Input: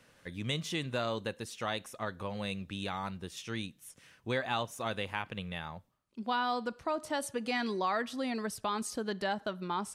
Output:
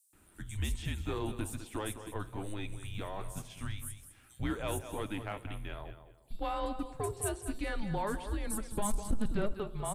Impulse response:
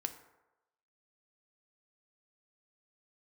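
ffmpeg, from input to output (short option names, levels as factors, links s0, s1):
-filter_complex "[0:a]tiltshelf=f=770:g=4.5,asplit=2[s0][s1];[s1]aecho=0:1:204|408|612:0.266|0.0559|0.0117[s2];[s0][s2]amix=inputs=2:normalize=0,flanger=delay=1.8:depth=7.2:regen=73:speed=1.2:shape=sinusoidal,afreqshift=-210,asettb=1/sr,asplit=3[s3][s4][s5];[s3]atrim=end=8.594[s6];[s4]atrim=start=8.59:end=9.41,asetpts=PTS-STARTPTS,afade=t=in:d=0.004:c=qsin,afade=t=out:st=0.816:d=0.004:c=qsin,lowshelf=f=250:g=11[s7];[s5]atrim=start=9.406[s8];[s6][s7]acrossfade=d=0.004:c1=hsin:c2=qsin[s9];[s9][s8]acrossfade=d=0.004:c1=qsin:c2=hsin,acrossover=split=5400[s10][s11];[s10]adelay=130[s12];[s12][s11]amix=inputs=2:normalize=0,asoftclip=type=tanh:threshold=0.0562,asplit=2[s13][s14];[1:a]atrim=start_sample=2205,asetrate=22491,aresample=44100[s15];[s14][s15]afir=irnorm=-1:irlink=0,volume=0.237[s16];[s13][s16]amix=inputs=2:normalize=0,aexciter=amount=6:drive=3.9:freq=7500"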